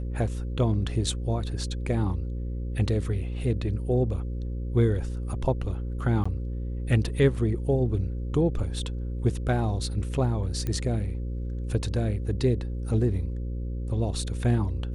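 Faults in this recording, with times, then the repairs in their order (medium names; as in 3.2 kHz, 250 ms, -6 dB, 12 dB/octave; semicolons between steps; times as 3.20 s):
buzz 60 Hz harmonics 9 -31 dBFS
6.24–6.25 s: dropout 15 ms
10.67 s: pop -18 dBFS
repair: de-click; de-hum 60 Hz, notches 9; interpolate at 6.24 s, 15 ms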